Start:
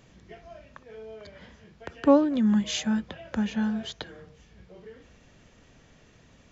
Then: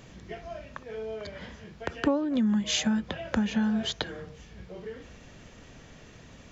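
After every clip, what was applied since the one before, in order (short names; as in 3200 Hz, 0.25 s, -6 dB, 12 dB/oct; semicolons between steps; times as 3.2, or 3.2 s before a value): compressor 10:1, threshold -29 dBFS, peak gain reduction 16 dB; gain +6.5 dB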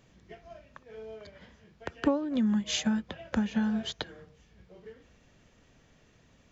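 upward expander 1.5:1, over -44 dBFS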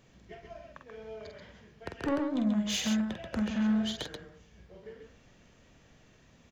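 soft clip -26.5 dBFS, distortion -12 dB; loudspeakers at several distances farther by 16 m -6 dB, 46 m -5 dB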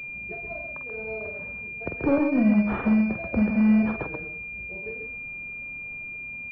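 bin magnitudes rounded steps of 15 dB; pulse-width modulation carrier 2400 Hz; gain +9 dB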